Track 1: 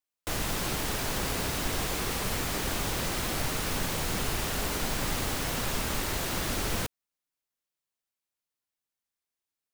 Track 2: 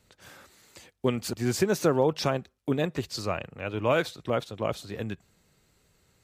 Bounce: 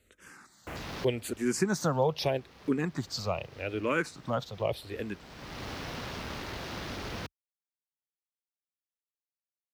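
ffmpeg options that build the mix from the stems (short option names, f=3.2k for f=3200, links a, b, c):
-filter_complex "[0:a]highpass=56,afwtdn=0.0112,adelay=400,volume=-5.5dB[a];[1:a]asplit=2[b][c];[c]afreqshift=-0.81[d];[b][d]amix=inputs=2:normalize=1,volume=0dB,asplit=2[e][f];[f]apad=whole_len=447150[g];[a][g]sidechaincompress=threshold=-49dB:ratio=6:attack=34:release=502[h];[h][e]amix=inputs=2:normalize=0"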